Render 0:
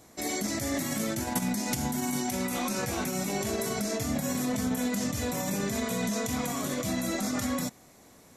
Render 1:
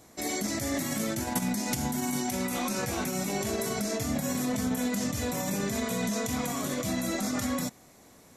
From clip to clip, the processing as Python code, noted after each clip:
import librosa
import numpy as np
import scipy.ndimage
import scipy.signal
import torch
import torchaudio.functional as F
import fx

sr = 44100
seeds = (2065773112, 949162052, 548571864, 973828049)

y = x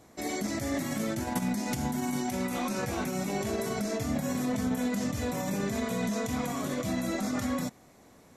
y = fx.high_shelf(x, sr, hz=3600.0, db=-7.5)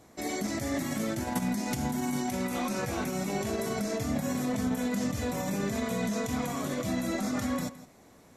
y = x + 10.0 ** (-16.5 / 20.0) * np.pad(x, (int(165 * sr / 1000.0), 0))[:len(x)]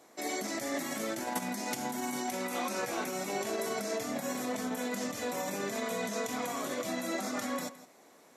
y = scipy.signal.sosfilt(scipy.signal.butter(2, 350.0, 'highpass', fs=sr, output='sos'), x)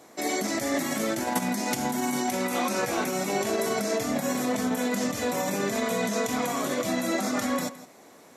y = fx.low_shelf(x, sr, hz=140.0, db=9.5)
y = F.gain(torch.from_numpy(y), 6.5).numpy()